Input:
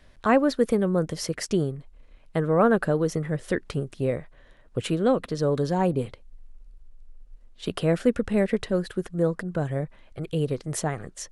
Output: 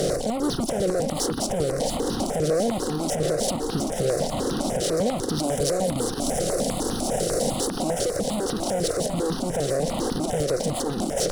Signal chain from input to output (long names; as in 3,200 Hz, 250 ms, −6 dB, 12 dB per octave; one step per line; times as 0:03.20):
compressor on every frequency bin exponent 0.2
0:05.44–0:07.68: high-shelf EQ 7,100 Hz +8 dB
reverb reduction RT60 1.1 s
flat-topped bell 1,600 Hz −13.5 dB
power curve on the samples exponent 0.7
downward compressor, threshold −14 dBFS, peak gain reduction 6.5 dB
feedback echo with a high-pass in the loop 690 ms, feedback 58%, high-pass 420 Hz, level −5 dB
brickwall limiter −12 dBFS, peak gain reduction 10 dB
step-sequenced phaser 10 Hz 250–2,200 Hz
level −1.5 dB